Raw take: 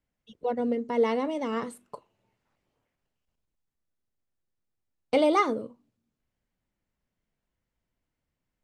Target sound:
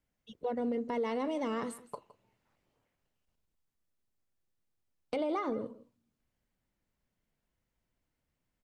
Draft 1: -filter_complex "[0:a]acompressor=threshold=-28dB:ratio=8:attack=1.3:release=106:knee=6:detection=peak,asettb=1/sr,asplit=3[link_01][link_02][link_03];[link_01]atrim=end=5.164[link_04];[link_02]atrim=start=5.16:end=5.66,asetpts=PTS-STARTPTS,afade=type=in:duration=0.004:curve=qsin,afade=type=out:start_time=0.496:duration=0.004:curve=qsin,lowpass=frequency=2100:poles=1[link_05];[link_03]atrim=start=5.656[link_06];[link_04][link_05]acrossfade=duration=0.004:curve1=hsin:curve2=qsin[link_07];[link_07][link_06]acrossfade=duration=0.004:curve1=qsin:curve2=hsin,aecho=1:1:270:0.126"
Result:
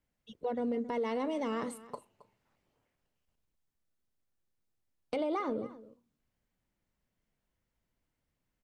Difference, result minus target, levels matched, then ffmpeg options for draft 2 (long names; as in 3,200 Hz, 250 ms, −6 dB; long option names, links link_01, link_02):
echo 106 ms late
-filter_complex "[0:a]acompressor=threshold=-28dB:ratio=8:attack=1.3:release=106:knee=6:detection=peak,asettb=1/sr,asplit=3[link_01][link_02][link_03];[link_01]atrim=end=5.164[link_04];[link_02]atrim=start=5.16:end=5.66,asetpts=PTS-STARTPTS,afade=type=in:duration=0.004:curve=qsin,afade=type=out:start_time=0.496:duration=0.004:curve=qsin,lowpass=frequency=2100:poles=1[link_05];[link_03]atrim=start=5.656[link_06];[link_04][link_05]acrossfade=duration=0.004:curve1=hsin:curve2=qsin[link_07];[link_07][link_06]acrossfade=duration=0.004:curve1=qsin:curve2=hsin,aecho=1:1:164:0.126"